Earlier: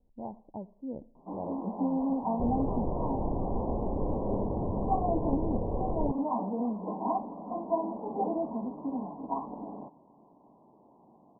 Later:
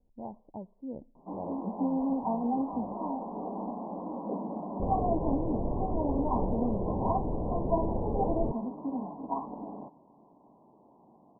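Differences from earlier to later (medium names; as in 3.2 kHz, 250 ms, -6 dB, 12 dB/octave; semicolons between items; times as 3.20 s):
speech: send -9.0 dB; second sound: entry +2.40 s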